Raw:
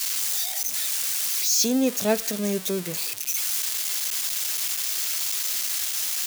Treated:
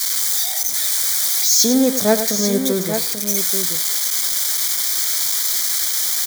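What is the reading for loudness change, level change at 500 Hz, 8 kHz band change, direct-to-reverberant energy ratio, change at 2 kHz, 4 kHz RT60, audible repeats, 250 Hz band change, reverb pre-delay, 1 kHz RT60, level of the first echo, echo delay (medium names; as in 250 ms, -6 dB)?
+7.5 dB, +7.5 dB, +7.5 dB, no reverb, +5.0 dB, no reverb, 2, +7.0 dB, no reverb, no reverb, -10.5 dB, 100 ms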